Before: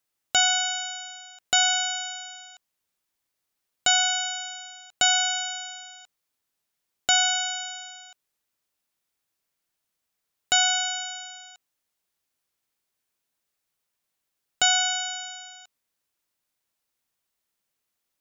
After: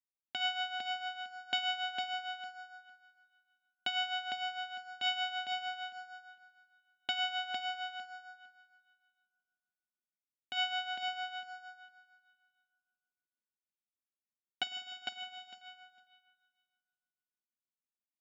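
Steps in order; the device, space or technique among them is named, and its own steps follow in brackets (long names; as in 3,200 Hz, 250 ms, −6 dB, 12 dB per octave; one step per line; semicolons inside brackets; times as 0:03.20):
0:14.63–0:15.16: first-order pre-emphasis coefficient 0.9
noise gate −39 dBFS, range −19 dB
combo amplifier with spring reverb and tremolo (spring reverb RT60 1.8 s, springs 50 ms, chirp 45 ms, DRR 9 dB; amplitude tremolo 6.5 Hz, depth 68%; loudspeaker in its box 83–4,200 Hz, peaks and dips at 88 Hz +9 dB, 220 Hz +6 dB, 370 Hz +7 dB, 1,300 Hz −7 dB)
octave-band graphic EQ 250/500/1,000/4,000/8,000 Hz +10/−9/−6/−4/−9 dB
repeating echo 455 ms, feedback 16%, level −3.5 dB
level −4 dB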